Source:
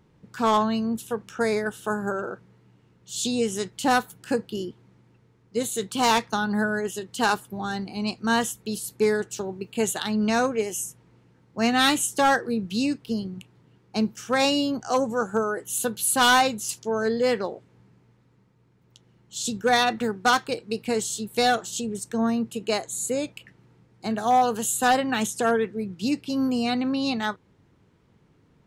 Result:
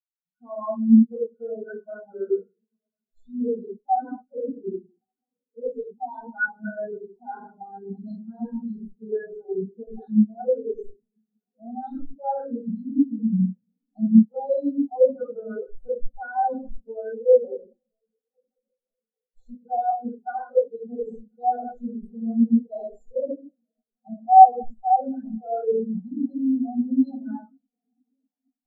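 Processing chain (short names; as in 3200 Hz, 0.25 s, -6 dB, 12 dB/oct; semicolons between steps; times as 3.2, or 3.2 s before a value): tracing distortion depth 0.066 ms; shoebox room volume 210 m³, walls mixed, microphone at 6.5 m; added harmonics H 5 -19 dB, 7 -34 dB, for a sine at 12.5 dBFS; reverse; compressor 16:1, threshold -9 dBFS, peak gain reduction 16 dB; reverse; Chebyshev band-stop 1600–3600 Hz, order 2; notches 50/100/150/200/250 Hz; on a send: diffused feedback echo 1.088 s, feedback 71%, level -13.5 dB; on the sum: spectral expander 4:1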